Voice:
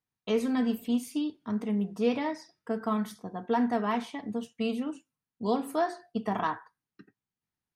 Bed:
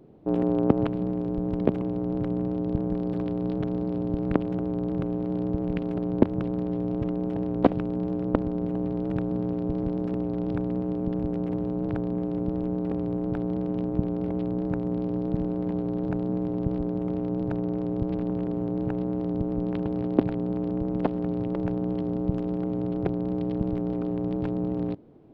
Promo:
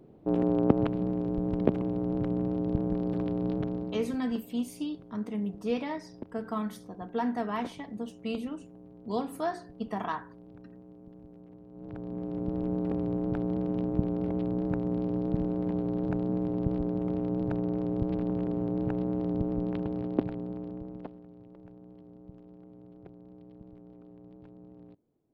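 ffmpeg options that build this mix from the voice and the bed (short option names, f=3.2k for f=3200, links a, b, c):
-filter_complex "[0:a]adelay=3650,volume=-3.5dB[a];[1:a]volume=18.5dB,afade=t=out:st=3.53:d=0.67:silence=0.0944061,afade=t=in:st=11.7:d=1.03:silence=0.0944061,afade=t=out:st=19.42:d=1.82:silence=0.0891251[b];[a][b]amix=inputs=2:normalize=0"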